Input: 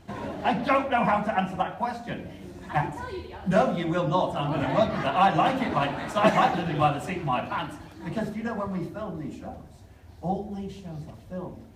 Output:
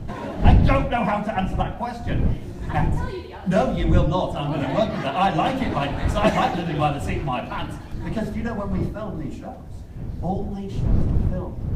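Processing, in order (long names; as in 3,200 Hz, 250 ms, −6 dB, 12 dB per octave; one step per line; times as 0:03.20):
wind on the microphone 110 Hz −28 dBFS
dynamic equaliser 1,200 Hz, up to −5 dB, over −35 dBFS, Q 0.87
level +3.5 dB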